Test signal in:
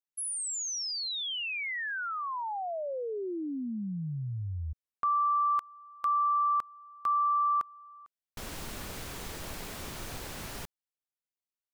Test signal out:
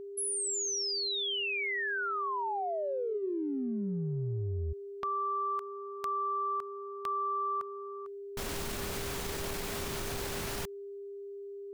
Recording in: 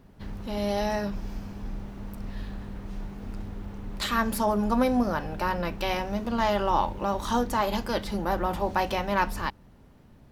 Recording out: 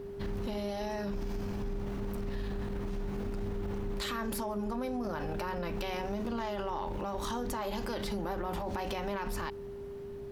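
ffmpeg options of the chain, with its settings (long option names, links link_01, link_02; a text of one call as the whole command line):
ffmpeg -i in.wav -af "acompressor=threshold=-36dB:ratio=10:attack=0.87:release=55:knee=1:detection=peak,aeval=exprs='val(0)+0.00562*sin(2*PI*400*n/s)':channel_layout=same,volume=4.5dB" out.wav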